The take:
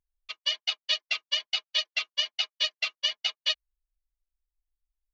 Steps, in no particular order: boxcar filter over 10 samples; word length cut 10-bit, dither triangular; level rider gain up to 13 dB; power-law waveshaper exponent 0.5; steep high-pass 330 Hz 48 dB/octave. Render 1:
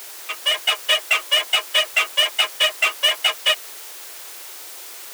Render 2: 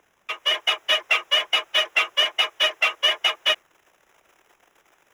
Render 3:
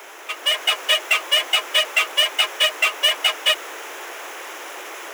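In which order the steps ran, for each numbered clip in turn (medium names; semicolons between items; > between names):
boxcar filter > level rider > word length cut > power-law waveshaper > steep high-pass; level rider > power-law waveshaper > steep high-pass > word length cut > boxcar filter; word length cut > boxcar filter > level rider > power-law waveshaper > steep high-pass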